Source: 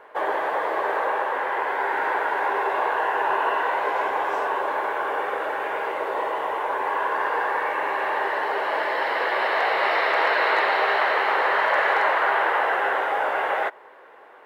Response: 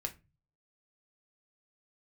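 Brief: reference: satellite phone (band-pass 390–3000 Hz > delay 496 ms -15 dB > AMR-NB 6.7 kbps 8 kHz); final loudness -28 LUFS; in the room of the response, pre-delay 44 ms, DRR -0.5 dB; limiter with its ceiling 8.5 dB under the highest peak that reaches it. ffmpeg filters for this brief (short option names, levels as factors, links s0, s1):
-filter_complex "[0:a]alimiter=limit=0.119:level=0:latency=1,asplit=2[s0][s1];[1:a]atrim=start_sample=2205,adelay=44[s2];[s1][s2]afir=irnorm=-1:irlink=0,volume=1.06[s3];[s0][s3]amix=inputs=2:normalize=0,highpass=390,lowpass=3000,aecho=1:1:496:0.178,volume=0.891" -ar 8000 -c:a libopencore_amrnb -b:a 6700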